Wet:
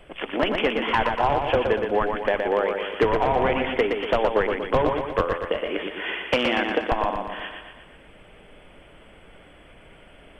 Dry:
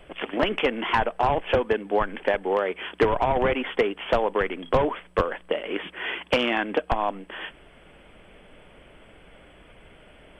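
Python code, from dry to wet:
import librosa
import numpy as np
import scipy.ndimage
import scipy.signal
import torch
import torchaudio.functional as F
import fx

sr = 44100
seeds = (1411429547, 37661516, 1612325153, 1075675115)

y = x + fx.echo_feedback(x, sr, ms=119, feedback_pct=54, wet_db=-5.0, dry=0)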